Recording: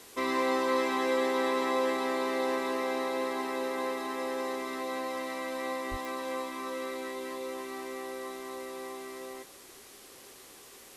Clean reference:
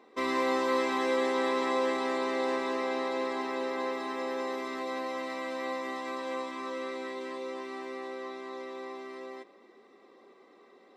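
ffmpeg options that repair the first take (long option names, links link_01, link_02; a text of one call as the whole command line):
ffmpeg -i in.wav -filter_complex "[0:a]adeclick=threshold=4,asplit=3[link_01][link_02][link_03];[link_01]afade=type=out:start_time=5.9:duration=0.02[link_04];[link_02]highpass=frequency=140:width=0.5412,highpass=frequency=140:width=1.3066,afade=type=in:start_time=5.9:duration=0.02,afade=type=out:start_time=6.02:duration=0.02[link_05];[link_03]afade=type=in:start_time=6.02:duration=0.02[link_06];[link_04][link_05][link_06]amix=inputs=3:normalize=0,afwtdn=0.0028" out.wav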